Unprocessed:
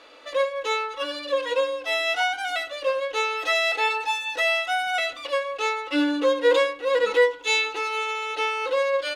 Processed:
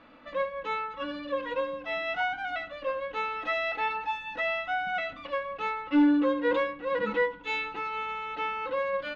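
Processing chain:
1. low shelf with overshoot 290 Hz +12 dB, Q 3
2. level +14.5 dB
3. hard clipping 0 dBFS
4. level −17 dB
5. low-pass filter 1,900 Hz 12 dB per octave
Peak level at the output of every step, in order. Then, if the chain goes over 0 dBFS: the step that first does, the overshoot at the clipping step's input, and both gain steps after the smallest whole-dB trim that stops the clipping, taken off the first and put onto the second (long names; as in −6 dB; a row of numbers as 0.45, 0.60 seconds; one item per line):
−9.5, +5.0, 0.0, −17.0, −17.0 dBFS
step 2, 5.0 dB
step 2 +9.5 dB, step 4 −12 dB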